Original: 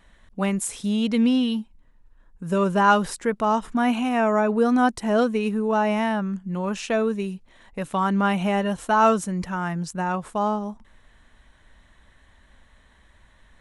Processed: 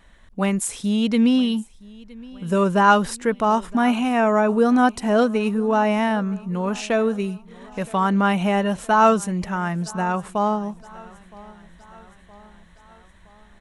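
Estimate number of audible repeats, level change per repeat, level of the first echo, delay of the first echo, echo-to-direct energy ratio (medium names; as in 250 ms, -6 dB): 3, -5.0 dB, -22.5 dB, 967 ms, -21.0 dB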